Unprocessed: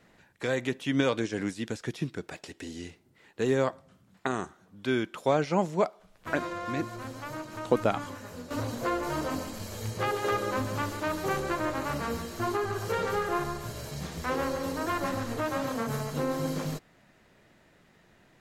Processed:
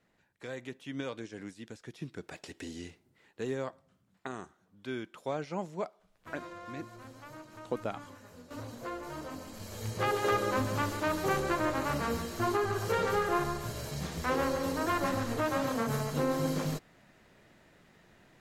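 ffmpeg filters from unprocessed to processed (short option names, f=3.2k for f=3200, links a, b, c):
-af "volume=8.5dB,afade=t=in:st=1.91:d=0.66:silence=0.298538,afade=t=out:st=2.57:d=1.02:silence=0.375837,afade=t=in:st=9.39:d=0.75:silence=0.316228"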